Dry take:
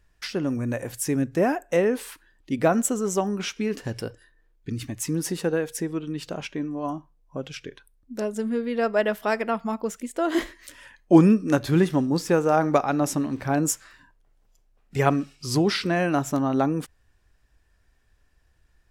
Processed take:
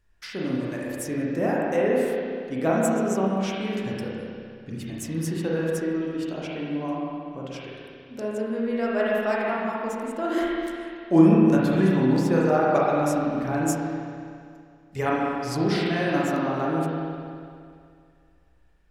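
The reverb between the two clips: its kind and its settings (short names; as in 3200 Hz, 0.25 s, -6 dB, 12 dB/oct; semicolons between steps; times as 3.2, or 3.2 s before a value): spring tank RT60 2.3 s, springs 31/47 ms, chirp 45 ms, DRR -5.5 dB; gain -6.5 dB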